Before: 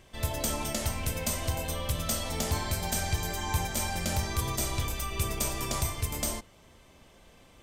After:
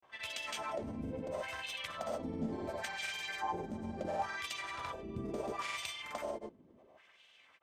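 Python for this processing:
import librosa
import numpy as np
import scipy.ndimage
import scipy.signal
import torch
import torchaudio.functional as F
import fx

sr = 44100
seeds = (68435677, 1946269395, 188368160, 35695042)

y = fx.filter_lfo_bandpass(x, sr, shape='sine', hz=0.72, low_hz=240.0, high_hz=3000.0, q=2.5)
y = fx.granulator(y, sr, seeds[0], grain_ms=100.0, per_s=20.0, spray_ms=100.0, spread_st=0)
y = y * 10.0 ** (5.0 / 20.0)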